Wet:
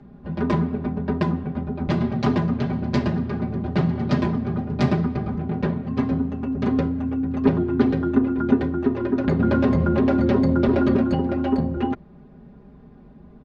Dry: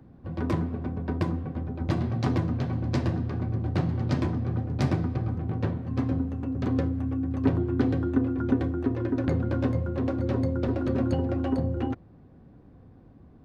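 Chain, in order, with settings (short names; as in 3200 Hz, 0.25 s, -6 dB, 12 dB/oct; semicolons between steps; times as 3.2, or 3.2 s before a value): LPF 4900 Hz 12 dB/oct; comb 4.9 ms, depth 96%; 9.39–10.97 fast leveller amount 70%; gain +4 dB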